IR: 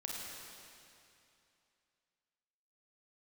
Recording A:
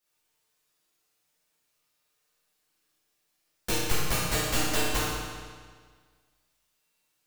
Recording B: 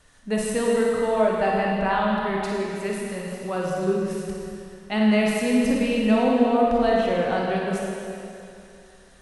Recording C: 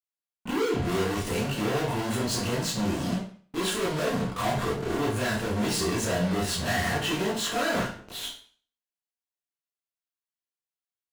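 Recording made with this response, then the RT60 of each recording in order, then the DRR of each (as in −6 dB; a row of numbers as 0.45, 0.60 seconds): B; 1.7, 2.7, 0.45 seconds; −9.5, −3.0, −9.5 decibels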